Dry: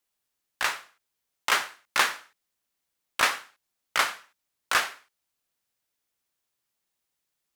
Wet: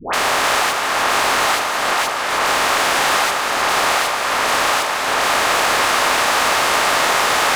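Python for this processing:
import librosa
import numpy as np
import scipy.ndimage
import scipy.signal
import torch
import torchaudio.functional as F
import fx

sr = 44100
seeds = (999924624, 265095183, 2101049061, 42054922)

y = fx.bin_compress(x, sr, power=0.2)
y = fx.over_compress(y, sr, threshold_db=-28.0, ratio=-1.0)
y = fx.dispersion(y, sr, late='highs', ms=136.0, hz=930.0)
y = fx.formant_shift(y, sr, semitones=-5)
y = fx.echo_alternate(y, sr, ms=156, hz=1100.0, feedback_pct=73, wet_db=-3)
y = y * librosa.db_to_amplitude(9.0)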